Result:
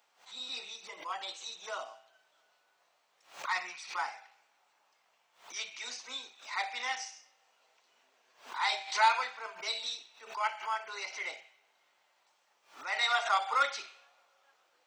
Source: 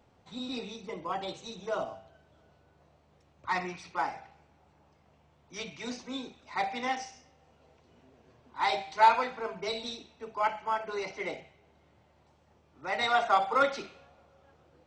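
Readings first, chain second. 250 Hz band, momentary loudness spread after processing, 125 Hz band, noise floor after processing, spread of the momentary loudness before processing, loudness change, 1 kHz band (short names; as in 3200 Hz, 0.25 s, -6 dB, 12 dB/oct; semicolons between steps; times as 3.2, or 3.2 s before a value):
under -20 dB, 16 LU, under -25 dB, -73 dBFS, 18 LU, -2.5 dB, -4.0 dB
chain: HPF 1100 Hz 12 dB/oct; high shelf 5100 Hz +7 dB; backwards sustainer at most 140 dB/s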